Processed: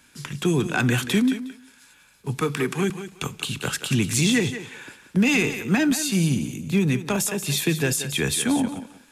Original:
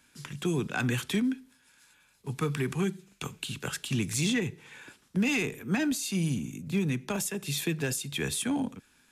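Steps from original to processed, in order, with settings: 2.41–2.90 s: high-pass 200 Hz; thinning echo 181 ms, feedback 20%, high-pass 280 Hz, level -10 dB; trim +7.5 dB

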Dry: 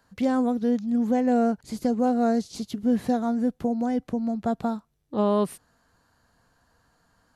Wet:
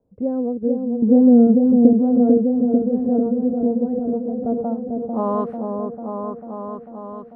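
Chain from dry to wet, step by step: level-controlled noise filter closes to 810 Hz, open at -21.5 dBFS; 1.02–1.93 s: graphic EQ 125/250/4000 Hz +7/+10/+5 dB; low-pass sweep 470 Hz -> 3.7 kHz, 4.40–6.62 s; on a send: delay with an opening low-pass 445 ms, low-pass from 750 Hz, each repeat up 1 oct, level -3 dB; on the sum: trim -2.5 dB

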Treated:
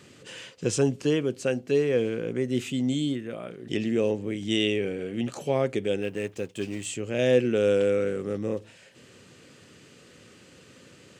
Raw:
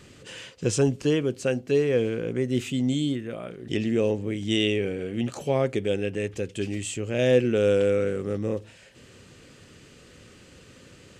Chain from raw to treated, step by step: 6.02–6.86 s: companding laws mixed up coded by A; high-pass 120 Hz; trim -1 dB

